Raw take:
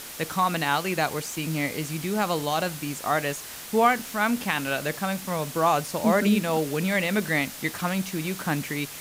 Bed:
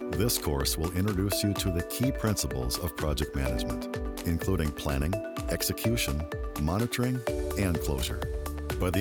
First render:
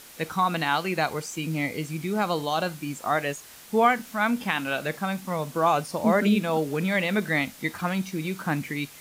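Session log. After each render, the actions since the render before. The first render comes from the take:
noise reduction from a noise print 8 dB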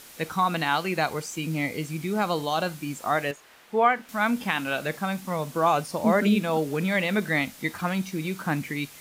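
0:03.31–0:04.09: bass and treble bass −11 dB, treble −14 dB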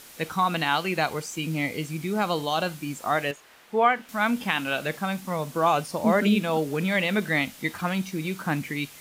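dynamic equaliser 3,000 Hz, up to +4 dB, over −43 dBFS, Q 2.9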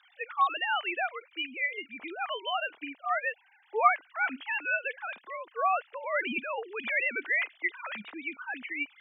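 three sine waves on the formant tracks
resonant band-pass 3,000 Hz, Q 0.59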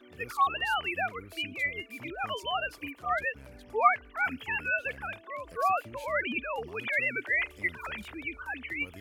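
mix in bed −20.5 dB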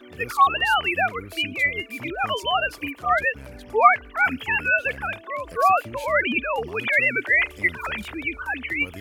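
level +9 dB
brickwall limiter −3 dBFS, peak gain reduction 2 dB

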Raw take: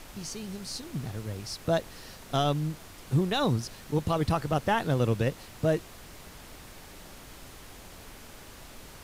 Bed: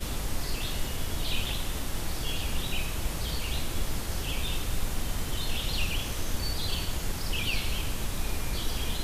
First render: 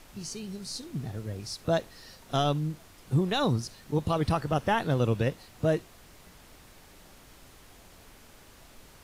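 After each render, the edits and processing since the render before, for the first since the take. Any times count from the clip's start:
noise reduction from a noise print 6 dB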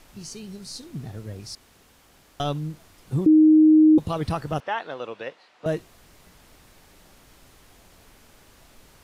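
0:01.55–0:02.40: fill with room tone
0:03.26–0:03.98: beep over 311 Hz −10.5 dBFS
0:04.60–0:05.66: band-pass filter 570–3,600 Hz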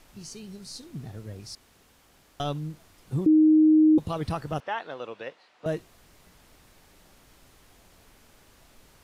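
level −3.5 dB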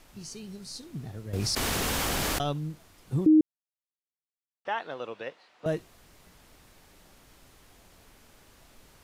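0:01.33–0:02.43: envelope flattener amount 100%
0:03.41–0:04.65: silence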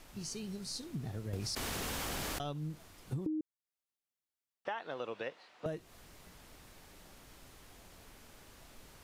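downward compressor 10 to 1, threshold −35 dBFS, peak gain reduction 18 dB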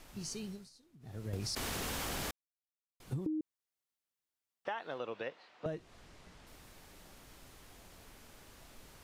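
0:00.45–0:01.25: duck −21 dB, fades 0.25 s
0:02.31–0:03.00: silence
0:04.98–0:06.47: high-frequency loss of the air 58 metres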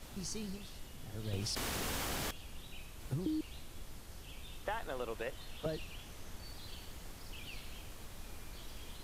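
mix in bed −18.5 dB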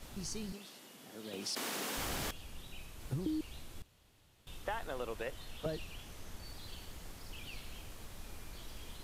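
0:00.52–0:01.97: high-pass filter 200 Hz 24 dB per octave
0:03.82–0:04.47: fill with room tone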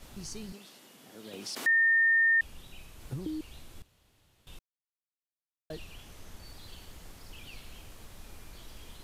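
0:01.66–0:02.41: beep over 1,820 Hz −20.5 dBFS
0:04.59–0:05.70: silence

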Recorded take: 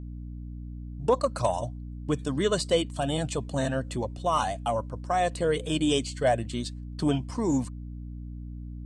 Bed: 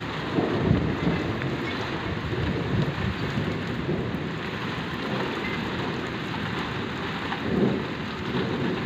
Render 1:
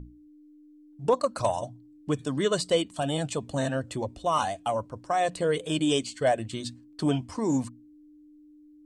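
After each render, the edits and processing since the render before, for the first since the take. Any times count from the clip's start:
mains-hum notches 60/120/180/240 Hz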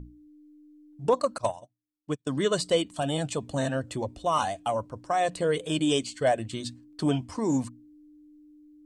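0:01.38–0:02.27: expander for the loud parts 2.5 to 1, over −47 dBFS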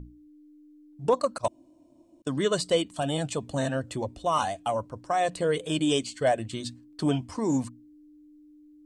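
0:01.48–0:02.22: fill with room tone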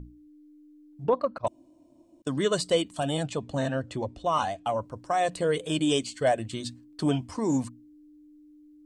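0:01.04–0:01.47: high-frequency loss of the air 350 metres
0:03.23–0:04.82: high-frequency loss of the air 70 metres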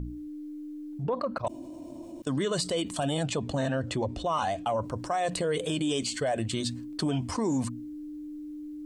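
brickwall limiter −21.5 dBFS, peak gain reduction 9 dB
envelope flattener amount 50%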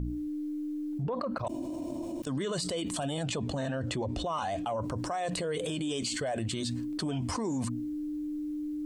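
brickwall limiter −26.5 dBFS, peak gain reduction 8.5 dB
envelope flattener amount 50%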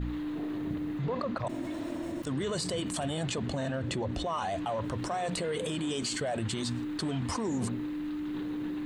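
mix in bed −17.5 dB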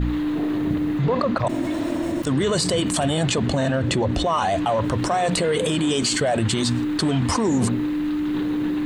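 level +11.5 dB

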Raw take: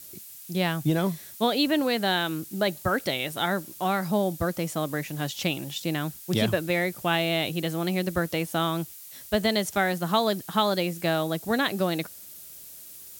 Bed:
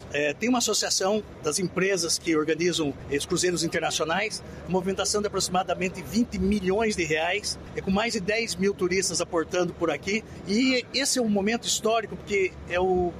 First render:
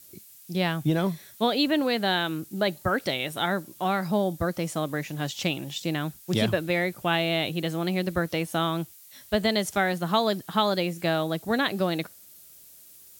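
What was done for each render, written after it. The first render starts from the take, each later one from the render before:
noise reduction from a noise print 6 dB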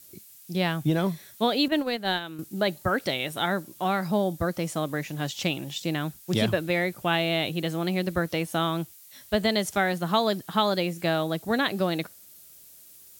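0:01.68–0:02.39: noise gate −25 dBFS, range −9 dB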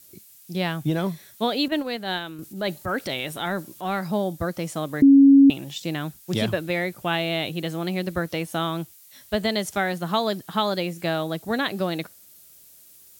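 0:01.84–0:03.99: transient designer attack −5 dB, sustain +3 dB
0:05.02–0:05.50: beep over 276 Hz −8.5 dBFS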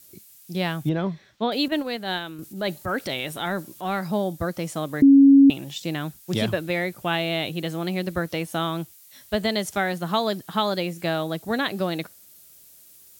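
0:00.89–0:01.52: high-frequency loss of the air 190 metres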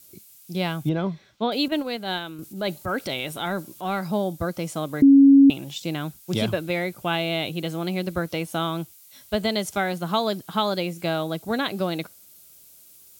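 notch filter 1,800 Hz, Q 7.8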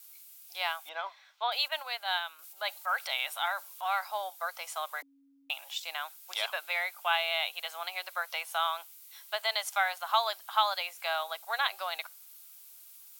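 Butterworth high-pass 760 Hz 36 dB per octave
parametric band 7,400 Hz −4.5 dB 1.7 octaves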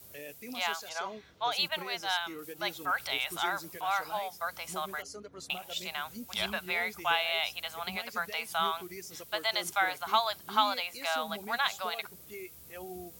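mix in bed −20 dB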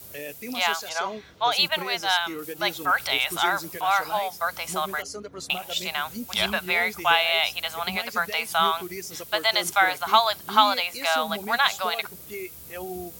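level +8.5 dB

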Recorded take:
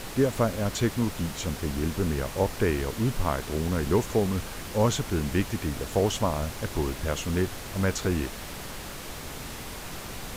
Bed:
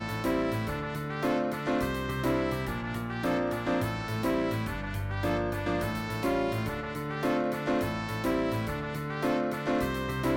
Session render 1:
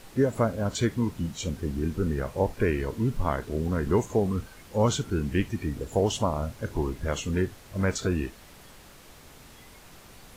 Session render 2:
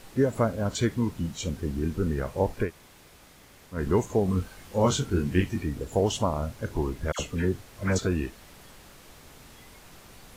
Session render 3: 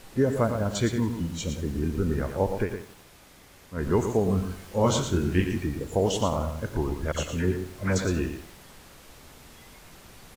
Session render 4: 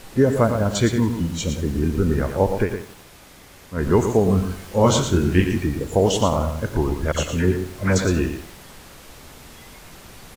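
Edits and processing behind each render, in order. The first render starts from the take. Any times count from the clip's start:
noise reduction from a noise print 12 dB
0:02.66–0:03.76: fill with room tone, crossfade 0.10 s; 0:04.26–0:05.62: double-tracking delay 22 ms −4 dB; 0:07.12–0:07.99: all-pass dispersion lows, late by 74 ms, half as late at 1,400 Hz
single-tap delay 115 ms −8 dB; feedback echo at a low word length 90 ms, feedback 55%, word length 7 bits, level −13.5 dB
level +6.5 dB

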